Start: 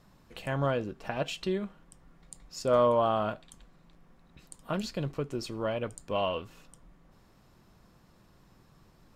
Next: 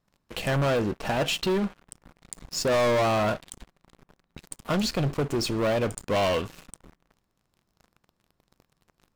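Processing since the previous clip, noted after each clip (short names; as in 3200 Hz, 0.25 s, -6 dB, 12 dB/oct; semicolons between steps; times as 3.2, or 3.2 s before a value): sample leveller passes 5; gain -6 dB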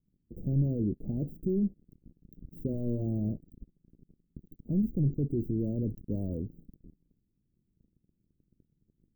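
inverse Chebyshev band-stop 1300–9200 Hz, stop band 70 dB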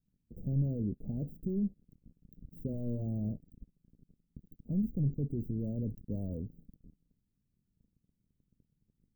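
bell 340 Hz -8.5 dB 0.37 oct; gain -3 dB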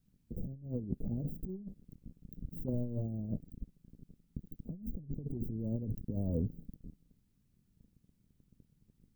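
negative-ratio compressor -38 dBFS, ratio -0.5; gain +2.5 dB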